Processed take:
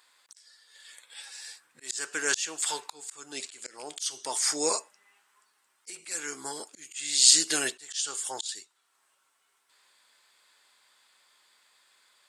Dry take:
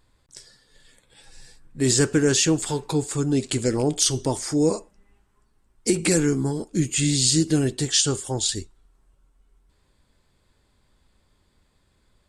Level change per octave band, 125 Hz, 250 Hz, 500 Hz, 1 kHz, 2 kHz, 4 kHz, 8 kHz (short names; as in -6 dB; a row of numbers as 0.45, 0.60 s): under -30 dB, -21.5 dB, -14.0 dB, -3.0 dB, -2.0 dB, -2.5 dB, -2.5 dB